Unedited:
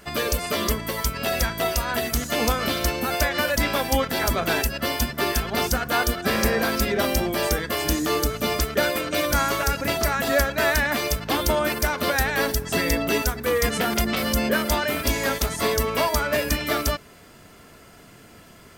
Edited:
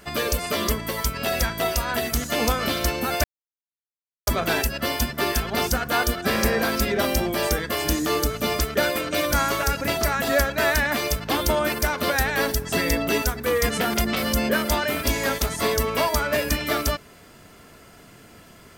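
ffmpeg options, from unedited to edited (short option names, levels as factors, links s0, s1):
-filter_complex "[0:a]asplit=3[s0][s1][s2];[s0]atrim=end=3.24,asetpts=PTS-STARTPTS,afade=t=out:st=3.236:d=0.004:c=hsin[s3];[s1]atrim=start=3.24:end=4.27,asetpts=PTS-STARTPTS,volume=0[s4];[s2]atrim=start=4.27,asetpts=PTS-STARTPTS,afade=t=in:d=0.004:c=hsin[s5];[s3][s4][s5]concat=n=3:v=0:a=1"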